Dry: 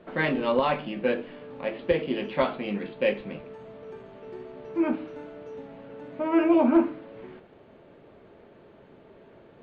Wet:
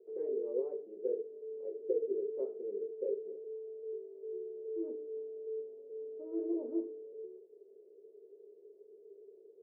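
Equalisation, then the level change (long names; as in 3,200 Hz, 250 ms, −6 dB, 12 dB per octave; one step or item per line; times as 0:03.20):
flat-topped band-pass 420 Hz, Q 5.8
+2.0 dB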